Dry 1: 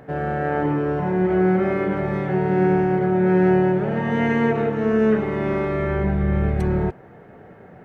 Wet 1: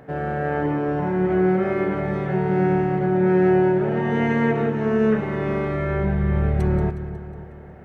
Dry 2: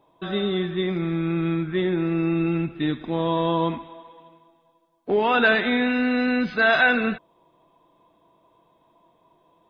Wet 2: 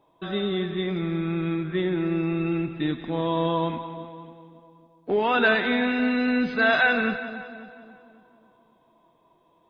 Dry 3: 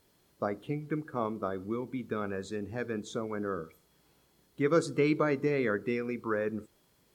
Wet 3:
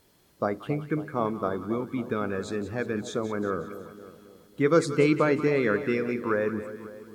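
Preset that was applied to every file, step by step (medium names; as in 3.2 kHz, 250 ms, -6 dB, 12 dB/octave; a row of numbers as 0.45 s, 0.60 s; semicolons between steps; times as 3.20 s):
two-band feedback delay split 940 Hz, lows 273 ms, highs 182 ms, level -12 dB; peak normalisation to -9 dBFS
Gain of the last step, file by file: -1.5 dB, -2.0 dB, +5.0 dB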